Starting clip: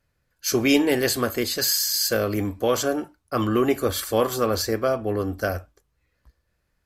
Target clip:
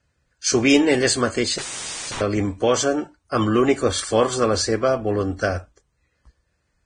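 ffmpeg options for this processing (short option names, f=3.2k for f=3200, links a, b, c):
-filter_complex "[0:a]asettb=1/sr,asplit=3[a][b][c];[a]atrim=end=1.584[d];[b]atrim=start=1.58:end=2.21,asetpts=PTS-STARTPTS,afade=t=in:d=0.004:c=qsin,afade=t=out:st=0.626:d=0.004:c=qsin,aeval=exprs='0.0398*(abs(mod(val(0)/0.0398+3,4)-2)-1)':c=same[e];[c]atrim=start=2.206[f];[d][e]acrossfade=d=0.004:c1=hsin:c2=qsin[g];[g][f]acrossfade=d=0.004:c1=qsin:c2=hsin,volume=3dB" -ar 22050 -c:a libvorbis -b:a 16k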